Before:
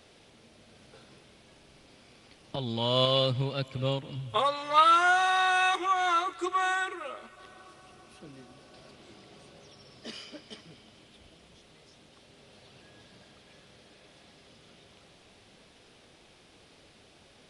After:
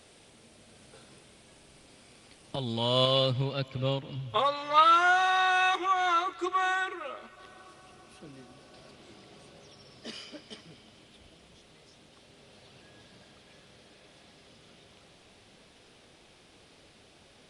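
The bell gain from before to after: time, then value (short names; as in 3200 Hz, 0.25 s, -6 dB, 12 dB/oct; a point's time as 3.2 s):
bell 8800 Hz 0.55 oct
2.59 s +10 dB
3.13 s +2 dB
3.63 s -8.5 dB
7.07 s -8.5 dB
7.56 s +1.5 dB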